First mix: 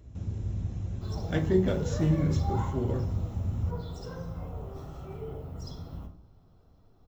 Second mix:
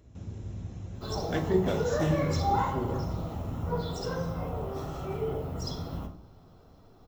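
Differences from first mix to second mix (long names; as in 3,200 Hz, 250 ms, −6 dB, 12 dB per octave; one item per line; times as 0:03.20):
background +9.5 dB
master: add low-shelf EQ 140 Hz −9 dB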